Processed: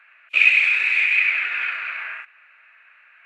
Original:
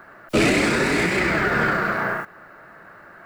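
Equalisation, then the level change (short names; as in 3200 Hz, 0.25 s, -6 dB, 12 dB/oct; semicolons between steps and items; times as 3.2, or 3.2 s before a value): resonant high-pass 2500 Hz, resonance Q 12; tape spacing loss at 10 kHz 22 dB; bell 5100 Hz -9 dB 0.49 oct; 0.0 dB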